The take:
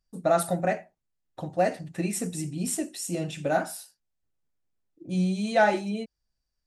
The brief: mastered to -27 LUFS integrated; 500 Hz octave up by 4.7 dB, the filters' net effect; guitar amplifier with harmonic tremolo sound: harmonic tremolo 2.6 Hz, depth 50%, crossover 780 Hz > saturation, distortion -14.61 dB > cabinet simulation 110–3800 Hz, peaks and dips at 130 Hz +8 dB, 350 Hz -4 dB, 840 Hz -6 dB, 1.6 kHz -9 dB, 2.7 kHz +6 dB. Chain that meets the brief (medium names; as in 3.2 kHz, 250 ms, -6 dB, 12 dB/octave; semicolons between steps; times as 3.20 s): peaking EQ 500 Hz +8 dB; harmonic tremolo 2.6 Hz, depth 50%, crossover 780 Hz; saturation -15 dBFS; cabinet simulation 110–3800 Hz, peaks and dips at 130 Hz +8 dB, 350 Hz -4 dB, 840 Hz -6 dB, 1.6 kHz -9 dB, 2.7 kHz +6 dB; trim +3 dB